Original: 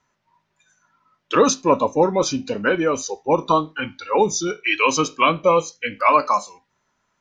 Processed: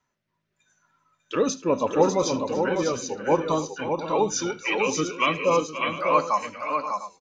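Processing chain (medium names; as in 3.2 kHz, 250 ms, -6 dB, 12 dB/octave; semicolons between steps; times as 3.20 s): rotary cabinet horn 0.85 Hz, later 5.5 Hz, at 4.91 s; multi-tap echo 76/291/531/598/701 ms -20/-17/-13.5/-5.5/-14.5 dB; trim -3.5 dB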